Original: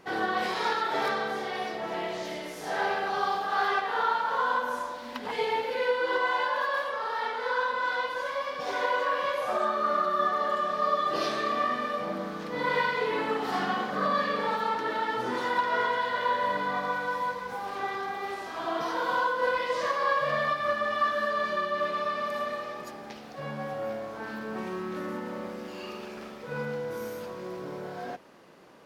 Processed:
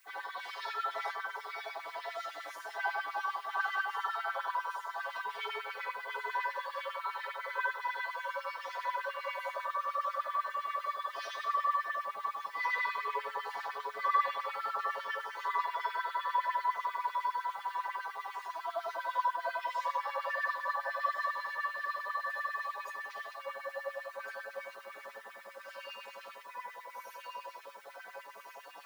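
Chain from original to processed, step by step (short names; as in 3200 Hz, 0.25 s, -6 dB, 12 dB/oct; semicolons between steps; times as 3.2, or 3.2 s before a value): reverse; upward compressor, threshold -30 dBFS; reverse; metallic resonator 100 Hz, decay 0.68 s, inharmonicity 0.008; added noise blue -69 dBFS; LFO high-pass sine 10 Hz 600–2400 Hz; echo with dull and thin repeats by turns 0.702 s, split 1000 Hz, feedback 61%, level -3 dB; gain +1 dB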